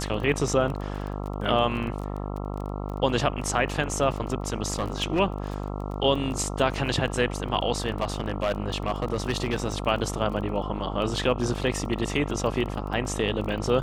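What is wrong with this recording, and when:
mains buzz 50 Hz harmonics 27 −32 dBFS
surface crackle 18 per second −32 dBFS
0:04.73–0:05.20: clipping −20.5 dBFS
0:08.01–0:09.65: clipping −19.5 dBFS

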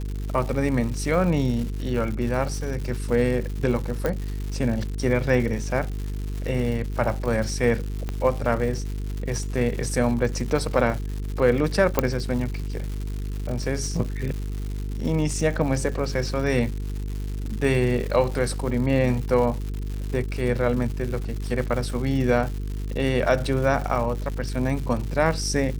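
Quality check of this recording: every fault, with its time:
mains buzz 50 Hz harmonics 9 −29 dBFS
surface crackle 240 per second −31 dBFS
0:04.06: click −12 dBFS
0:08.09: click −16 dBFS
0:11.99: click −5 dBFS

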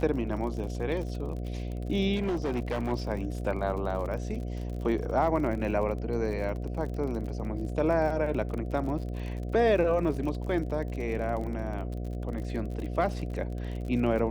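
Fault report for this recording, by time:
mains buzz 60 Hz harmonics 12 −34 dBFS
surface crackle 49 per second −36 dBFS
0:02.15–0:02.93: clipping −25.5 dBFS

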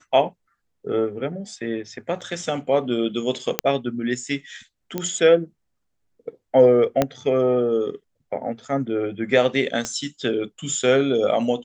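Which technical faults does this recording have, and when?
0:02.21–0:02.22: drop-out 6.3 ms
0:03.59: click −1 dBFS
0:04.98: click −11 dBFS
0:07.02: click −5 dBFS
0:09.85: click −13 dBFS

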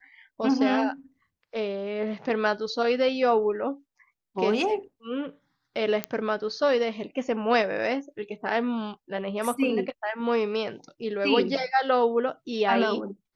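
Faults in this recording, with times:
0:06.04: click −11 dBFS

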